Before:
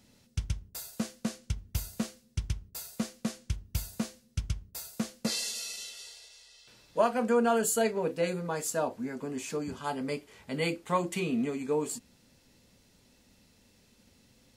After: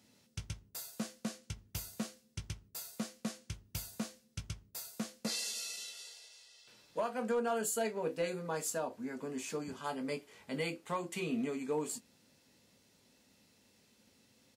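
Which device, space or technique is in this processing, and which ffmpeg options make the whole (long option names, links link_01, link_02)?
limiter into clipper: -filter_complex "[0:a]highpass=60,lowshelf=frequency=100:gain=-11.5,asplit=2[link_01][link_02];[link_02]adelay=19,volume=-11dB[link_03];[link_01][link_03]amix=inputs=2:normalize=0,alimiter=limit=-21dB:level=0:latency=1:release=376,asoftclip=type=hard:threshold=-23dB,volume=-3.5dB"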